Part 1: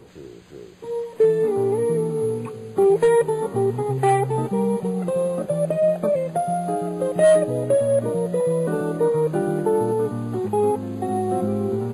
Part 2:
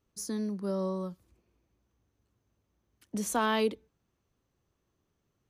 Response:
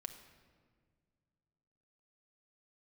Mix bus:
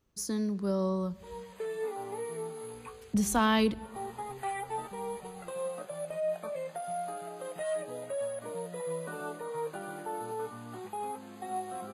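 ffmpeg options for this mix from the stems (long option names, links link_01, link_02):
-filter_complex "[0:a]highpass=720,alimiter=limit=-21.5dB:level=0:latency=1:release=33,flanger=delay=10:depth=8.2:regen=46:speed=0.25:shape=triangular,adelay=400,volume=-1dB[link_01];[1:a]volume=0dB,asplit=3[link_02][link_03][link_04];[link_02]atrim=end=1.51,asetpts=PTS-STARTPTS,afade=type=out:start_time=1.506:duration=0.004:curve=hsin[link_05];[link_03]atrim=start=1.51:end=2.73,asetpts=PTS-STARTPTS,volume=0[link_06];[link_04]atrim=start=2.73,asetpts=PTS-STARTPTS,afade=type=in:duration=0.004:curve=hsin[link_07];[link_05][link_06][link_07]concat=n=3:v=0:a=1,asplit=3[link_08][link_09][link_10];[link_09]volume=-5.5dB[link_11];[link_10]apad=whole_len=543891[link_12];[link_01][link_12]sidechaincompress=threshold=-47dB:ratio=8:attack=5.8:release=196[link_13];[2:a]atrim=start_sample=2205[link_14];[link_11][link_14]afir=irnorm=-1:irlink=0[link_15];[link_13][link_08][link_15]amix=inputs=3:normalize=0,asubboost=boost=8:cutoff=140"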